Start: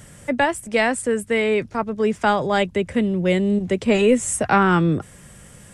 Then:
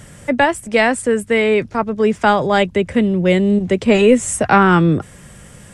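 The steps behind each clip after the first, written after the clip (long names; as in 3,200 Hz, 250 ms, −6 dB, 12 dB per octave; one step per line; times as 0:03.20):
high-shelf EQ 9,000 Hz −6 dB
level +5 dB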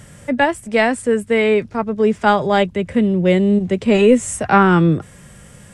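harmonic and percussive parts rebalanced harmonic +6 dB
level −6 dB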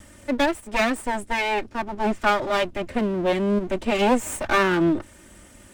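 lower of the sound and its delayed copy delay 3.3 ms
level −4 dB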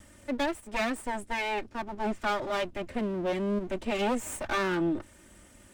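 soft clipping −14 dBFS, distortion −16 dB
level −6.5 dB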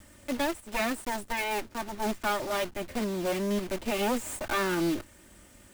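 one scale factor per block 3 bits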